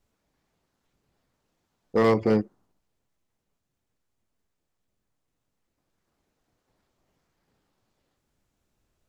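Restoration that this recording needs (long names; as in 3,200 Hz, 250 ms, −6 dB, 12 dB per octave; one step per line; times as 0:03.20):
clipped peaks rebuilt −14.5 dBFS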